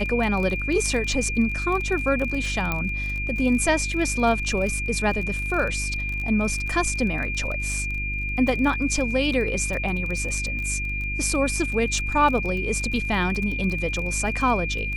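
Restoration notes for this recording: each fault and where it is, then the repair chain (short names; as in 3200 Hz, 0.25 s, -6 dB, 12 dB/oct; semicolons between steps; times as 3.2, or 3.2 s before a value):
crackle 24/s -28 dBFS
hum 50 Hz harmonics 7 -30 dBFS
tone 2400 Hz -28 dBFS
2.72 pop -11 dBFS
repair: de-click; de-hum 50 Hz, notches 7; notch 2400 Hz, Q 30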